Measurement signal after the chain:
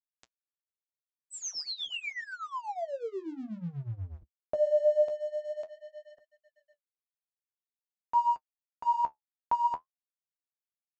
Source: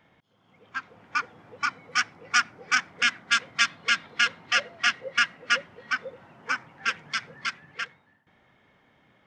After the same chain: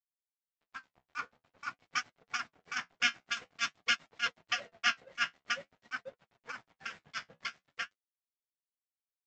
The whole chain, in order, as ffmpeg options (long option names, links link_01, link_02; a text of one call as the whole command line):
ffmpeg -i in.wav -af "adynamicequalizer=threshold=0.01:dfrequency=1600:dqfactor=2.7:tfrequency=1600:tqfactor=2.7:attack=5:release=100:ratio=0.375:range=3:mode=cutabove:tftype=bell,tremolo=f=8.2:d=0.84,aresample=16000,aeval=exprs='sgn(val(0))*max(abs(val(0))-0.00299,0)':channel_layout=same,aresample=44100,equalizer=frequency=690:width=4.3:gain=4.5,flanger=delay=7:depth=8.3:regen=-45:speed=0.48:shape=sinusoidal" out.wav